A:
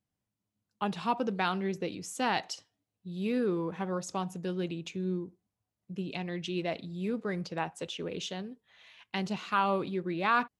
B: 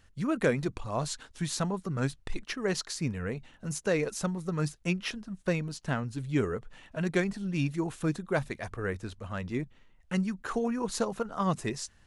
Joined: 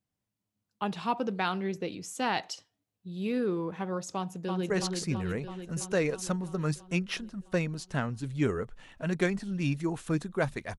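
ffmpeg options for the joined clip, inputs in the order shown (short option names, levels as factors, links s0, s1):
-filter_complex "[0:a]apad=whole_dur=10.78,atrim=end=10.78,atrim=end=4.702[s0];[1:a]atrim=start=2.638:end=8.72[s1];[s0][s1]acrossfade=d=0.004:c1=hsin:c2=hsin,asplit=2[s2][s3];[s3]afade=t=in:st=4.15:d=0.01,afade=t=out:st=4.7:d=0.01,aecho=0:1:330|660|990|1320|1650|1980|2310|2640|2970|3300|3630|3960:0.668344|0.467841|0.327489|0.229242|0.160469|0.112329|0.07863|0.055041|0.0385287|0.0269701|0.0188791|0.0132153[s4];[s2][s4]amix=inputs=2:normalize=0"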